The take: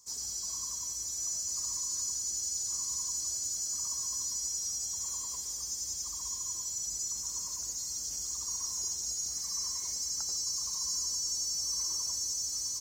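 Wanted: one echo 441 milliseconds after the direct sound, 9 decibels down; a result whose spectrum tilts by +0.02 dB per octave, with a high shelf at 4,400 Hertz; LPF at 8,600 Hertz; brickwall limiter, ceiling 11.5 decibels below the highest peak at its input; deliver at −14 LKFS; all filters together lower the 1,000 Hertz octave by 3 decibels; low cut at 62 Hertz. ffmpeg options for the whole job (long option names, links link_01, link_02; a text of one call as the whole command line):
ffmpeg -i in.wav -af "highpass=62,lowpass=8600,equalizer=frequency=1000:width_type=o:gain=-3.5,highshelf=frequency=4400:gain=5,alimiter=level_in=8dB:limit=-24dB:level=0:latency=1,volume=-8dB,aecho=1:1:441:0.355,volume=22.5dB" out.wav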